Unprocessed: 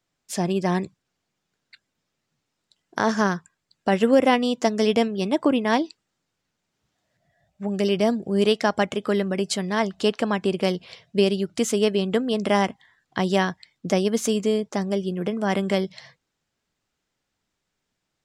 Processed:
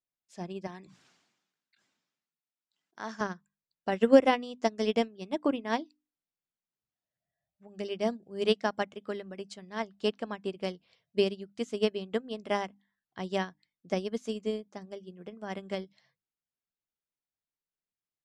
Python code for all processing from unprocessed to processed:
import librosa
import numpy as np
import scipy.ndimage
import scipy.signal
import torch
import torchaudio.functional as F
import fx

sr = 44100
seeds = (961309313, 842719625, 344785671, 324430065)

y = fx.chain(x, sr, fx.highpass(hz=220.0, slope=12),
    fx.peak_eq(hz=480.0, db=-7.0, octaves=1.0),
    fx.sustainer(db_per_s=52.0), at=(0.67, 3.21))
y = scipy.signal.sosfilt(scipy.signal.butter(2, 7600.0, 'lowpass', fs=sr, output='sos'), y)
y = fx.hum_notches(y, sr, base_hz=50, count=6)
y = fx.upward_expand(y, sr, threshold_db=-28.0, expansion=2.5)